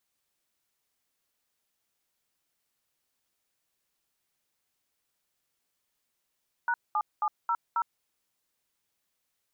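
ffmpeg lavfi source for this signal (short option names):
-f lavfi -i "aevalsrc='0.0447*clip(min(mod(t,0.27),0.06-mod(t,0.27))/0.002,0,1)*(eq(floor(t/0.27),0)*(sin(2*PI*941*mod(t,0.27))+sin(2*PI*1477*mod(t,0.27)))+eq(floor(t/0.27),1)*(sin(2*PI*852*mod(t,0.27))+sin(2*PI*1209*mod(t,0.27)))+eq(floor(t/0.27),2)*(sin(2*PI*852*mod(t,0.27))+sin(2*PI*1209*mod(t,0.27)))+eq(floor(t/0.27),3)*(sin(2*PI*941*mod(t,0.27))+sin(2*PI*1336*mod(t,0.27)))+eq(floor(t/0.27),4)*(sin(2*PI*941*mod(t,0.27))+sin(2*PI*1336*mod(t,0.27))))':d=1.35:s=44100"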